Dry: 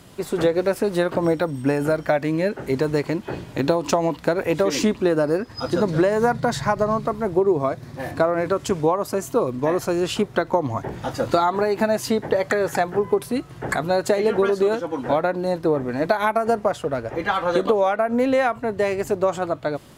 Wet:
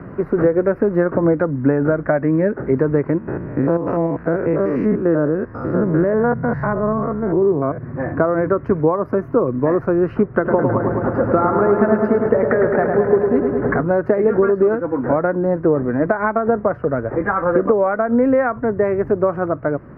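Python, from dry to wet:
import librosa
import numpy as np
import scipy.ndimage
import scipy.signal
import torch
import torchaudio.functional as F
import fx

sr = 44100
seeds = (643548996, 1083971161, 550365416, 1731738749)

y = fx.spec_steps(x, sr, hold_ms=100, at=(3.18, 7.78))
y = fx.echo_filtered(y, sr, ms=106, feedback_pct=80, hz=4800.0, wet_db=-5.5, at=(10.44, 13.81), fade=0.02)
y = fx.lowpass(y, sr, hz=fx.line((17.19, 2300.0), (17.67, 3900.0)), slope=12, at=(17.19, 17.67), fade=0.02)
y = scipy.signal.sosfilt(scipy.signal.cheby2(4, 40, 3200.0, 'lowpass', fs=sr, output='sos'), y)
y = fx.peak_eq(y, sr, hz=810.0, db=-8.0, octaves=0.8)
y = fx.band_squash(y, sr, depth_pct=40)
y = F.gain(torch.from_numpy(y), 6.0).numpy()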